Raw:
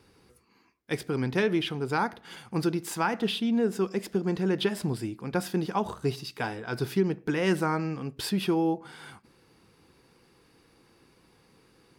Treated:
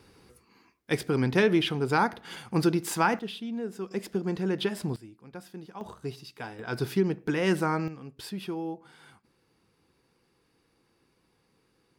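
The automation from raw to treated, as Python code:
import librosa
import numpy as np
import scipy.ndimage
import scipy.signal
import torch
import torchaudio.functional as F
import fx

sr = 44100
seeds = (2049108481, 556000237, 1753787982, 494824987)

y = fx.gain(x, sr, db=fx.steps((0.0, 3.0), (3.19, -8.5), (3.91, -2.0), (4.96, -14.5), (5.81, -7.5), (6.59, 0.0), (7.88, -8.5)))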